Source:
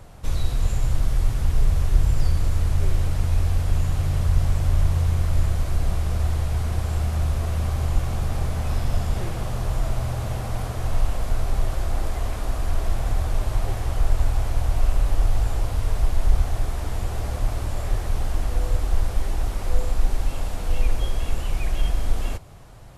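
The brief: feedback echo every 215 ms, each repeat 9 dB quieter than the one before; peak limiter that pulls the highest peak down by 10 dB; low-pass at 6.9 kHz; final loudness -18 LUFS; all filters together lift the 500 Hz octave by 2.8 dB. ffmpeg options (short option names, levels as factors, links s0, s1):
-af "lowpass=6900,equalizer=f=500:t=o:g=3.5,alimiter=limit=0.178:level=0:latency=1,aecho=1:1:215|430|645|860:0.355|0.124|0.0435|0.0152,volume=2.99"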